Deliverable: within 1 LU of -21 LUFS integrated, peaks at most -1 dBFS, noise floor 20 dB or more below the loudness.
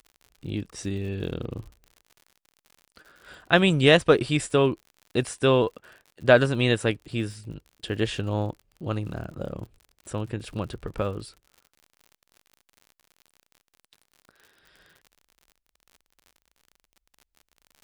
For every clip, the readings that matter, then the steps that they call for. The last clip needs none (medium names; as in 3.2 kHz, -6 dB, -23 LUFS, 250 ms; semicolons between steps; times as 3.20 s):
tick rate 59 per s; loudness -25.0 LUFS; peak level -3.0 dBFS; loudness target -21.0 LUFS
-> de-click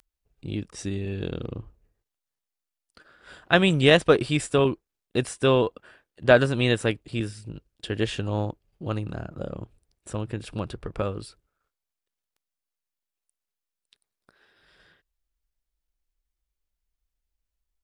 tick rate 0.11 per s; loudness -25.0 LUFS; peak level -3.0 dBFS; loudness target -21.0 LUFS
-> trim +4 dB; peak limiter -1 dBFS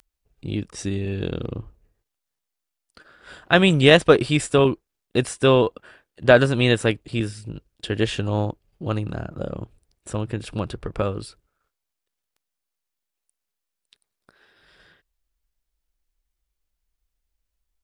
loudness -21.5 LUFS; peak level -1.0 dBFS; noise floor -83 dBFS